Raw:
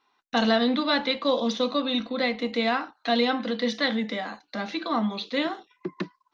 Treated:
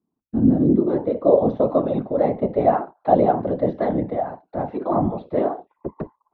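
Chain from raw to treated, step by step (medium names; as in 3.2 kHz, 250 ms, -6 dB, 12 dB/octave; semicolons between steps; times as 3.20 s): whisper effect; low-pass sweep 230 Hz -> 690 Hz, 0.32–1.46 s; trim +3 dB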